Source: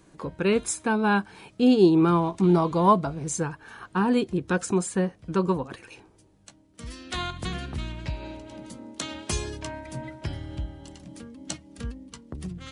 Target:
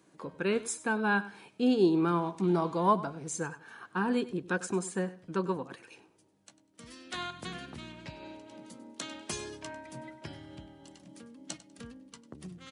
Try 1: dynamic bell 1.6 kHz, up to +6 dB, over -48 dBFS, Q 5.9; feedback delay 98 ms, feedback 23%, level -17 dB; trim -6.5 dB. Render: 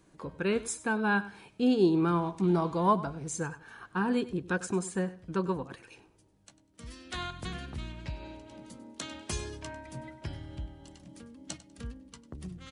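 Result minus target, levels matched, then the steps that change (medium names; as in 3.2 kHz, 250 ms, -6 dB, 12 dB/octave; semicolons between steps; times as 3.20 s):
125 Hz band +3.0 dB
add after dynamic bell: high-pass 170 Hz 12 dB/octave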